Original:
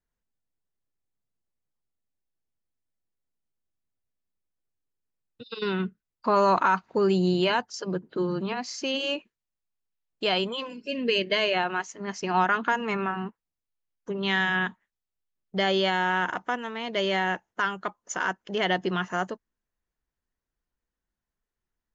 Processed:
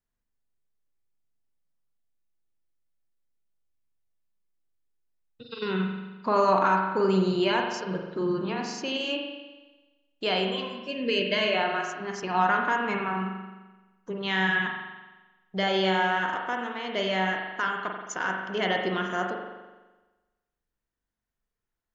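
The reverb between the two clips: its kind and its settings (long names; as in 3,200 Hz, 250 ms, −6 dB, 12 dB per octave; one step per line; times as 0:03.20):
spring reverb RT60 1.2 s, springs 42 ms, chirp 50 ms, DRR 1.5 dB
level −2.5 dB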